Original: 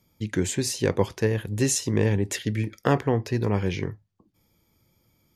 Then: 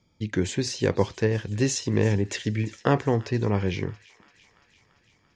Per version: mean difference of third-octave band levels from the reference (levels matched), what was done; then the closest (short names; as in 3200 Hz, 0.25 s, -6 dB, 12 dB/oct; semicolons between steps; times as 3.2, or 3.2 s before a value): 2.0 dB: LPF 6300 Hz 24 dB/oct; on a send: thin delay 0.34 s, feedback 68%, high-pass 1600 Hz, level -18 dB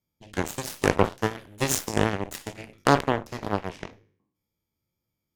8.0 dB: spectral trails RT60 0.58 s; added harmonics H 5 -30 dB, 6 -31 dB, 7 -15 dB, 8 -24 dB, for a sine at -4 dBFS; gain +2 dB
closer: first